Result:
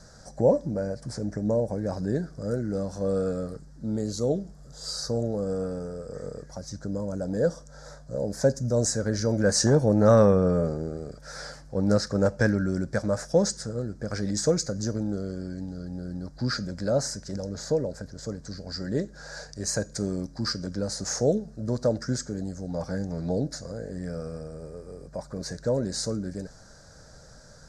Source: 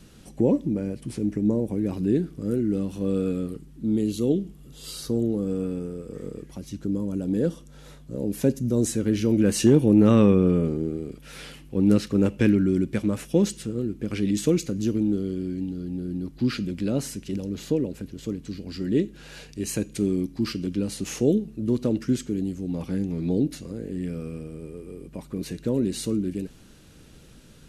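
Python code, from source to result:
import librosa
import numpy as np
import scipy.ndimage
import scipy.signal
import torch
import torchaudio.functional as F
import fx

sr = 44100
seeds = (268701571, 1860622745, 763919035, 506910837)

y = fx.curve_eq(x, sr, hz=(130.0, 240.0, 350.0, 600.0, 1100.0, 1600.0, 2800.0, 4900.0, 7500.0, 12000.0), db=(0, -7, -10, 11, 2, 8, -22, 9, 4, -15))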